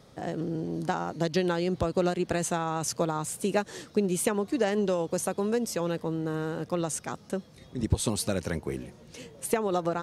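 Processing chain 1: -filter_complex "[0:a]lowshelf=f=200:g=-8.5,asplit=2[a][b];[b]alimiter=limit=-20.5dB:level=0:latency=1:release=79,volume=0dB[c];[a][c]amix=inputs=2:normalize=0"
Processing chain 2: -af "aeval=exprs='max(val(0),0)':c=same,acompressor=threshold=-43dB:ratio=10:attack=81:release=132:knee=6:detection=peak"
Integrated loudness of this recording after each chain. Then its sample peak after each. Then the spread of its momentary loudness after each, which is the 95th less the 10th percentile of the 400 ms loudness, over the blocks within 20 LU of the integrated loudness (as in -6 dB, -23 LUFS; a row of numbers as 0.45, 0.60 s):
-26.5, -43.0 LUFS; -9.5, -17.5 dBFS; 8, 5 LU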